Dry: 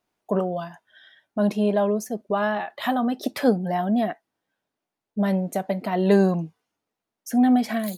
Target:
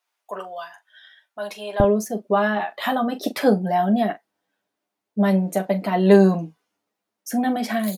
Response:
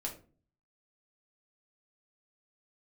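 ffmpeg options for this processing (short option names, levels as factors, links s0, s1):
-af "asetnsamples=n=441:p=0,asendcmd='1.8 highpass f 160',highpass=1000,aecho=1:1:10|42:0.562|0.237,volume=1.26"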